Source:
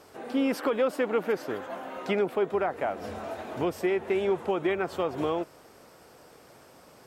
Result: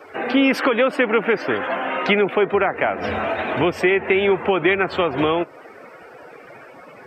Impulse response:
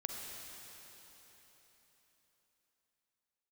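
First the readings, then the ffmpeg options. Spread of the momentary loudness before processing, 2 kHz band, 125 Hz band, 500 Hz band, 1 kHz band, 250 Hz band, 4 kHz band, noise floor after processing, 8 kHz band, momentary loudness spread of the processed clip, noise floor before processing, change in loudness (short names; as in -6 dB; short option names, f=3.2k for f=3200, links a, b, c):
10 LU, +16.0 dB, +10.0 dB, +8.0 dB, +10.5 dB, +9.0 dB, +14.5 dB, -43 dBFS, n/a, 6 LU, -54 dBFS, +10.0 dB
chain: -filter_complex "[0:a]equalizer=f=2.3k:t=o:w=1.7:g=11,asplit=2[a][b];[b]acompressor=threshold=-33dB:ratio=6,volume=0.5dB[c];[a][c]amix=inputs=2:normalize=0,afftdn=nr=20:nf=-41,acrossover=split=360[d][e];[e]acompressor=threshold=-29dB:ratio=1.5[f];[d][f]amix=inputs=2:normalize=0,volume=7dB"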